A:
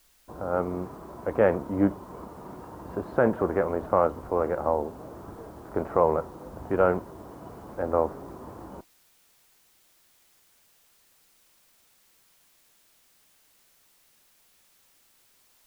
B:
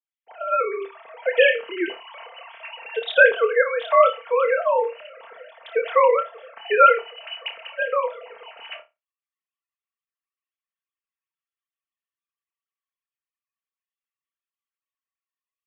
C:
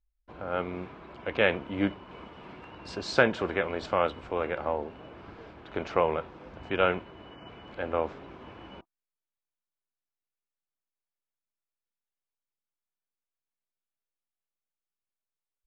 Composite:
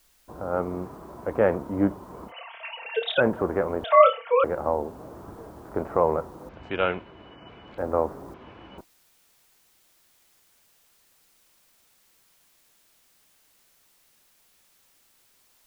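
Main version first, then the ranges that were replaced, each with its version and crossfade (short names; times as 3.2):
A
2.3–3.19 from B, crossfade 0.06 s
3.84–4.44 from B
6.49–7.78 from C
8.34–8.78 from C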